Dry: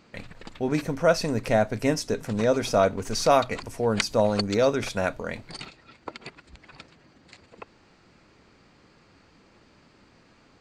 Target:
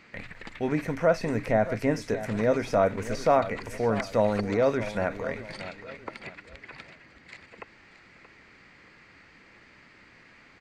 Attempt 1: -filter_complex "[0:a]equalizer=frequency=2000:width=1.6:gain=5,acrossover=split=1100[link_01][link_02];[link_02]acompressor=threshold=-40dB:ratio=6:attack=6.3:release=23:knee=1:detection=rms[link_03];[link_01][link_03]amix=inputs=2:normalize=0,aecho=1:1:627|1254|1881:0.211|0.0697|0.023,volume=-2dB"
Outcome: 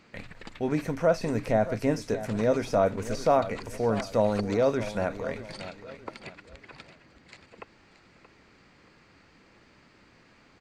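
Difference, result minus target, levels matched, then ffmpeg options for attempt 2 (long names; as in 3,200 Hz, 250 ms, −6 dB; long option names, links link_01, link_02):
2,000 Hz band −3.5 dB
-filter_complex "[0:a]equalizer=frequency=2000:width=1.6:gain=14.5,acrossover=split=1100[link_01][link_02];[link_02]acompressor=threshold=-40dB:ratio=6:attack=6.3:release=23:knee=1:detection=rms[link_03];[link_01][link_03]amix=inputs=2:normalize=0,aecho=1:1:627|1254|1881:0.211|0.0697|0.023,volume=-2dB"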